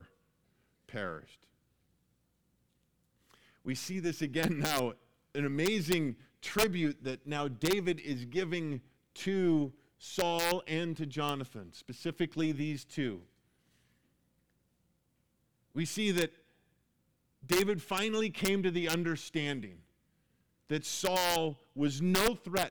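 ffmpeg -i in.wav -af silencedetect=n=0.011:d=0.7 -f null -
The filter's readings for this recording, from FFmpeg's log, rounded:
silence_start: 0.00
silence_end: 0.89 | silence_duration: 0.89
silence_start: 1.19
silence_end: 3.67 | silence_duration: 2.48
silence_start: 13.17
silence_end: 15.76 | silence_duration: 2.58
silence_start: 16.26
silence_end: 17.49 | silence_duration: 1.23
silence_start: 19.67
silence_end: 20.70 | silence_duration: 1.03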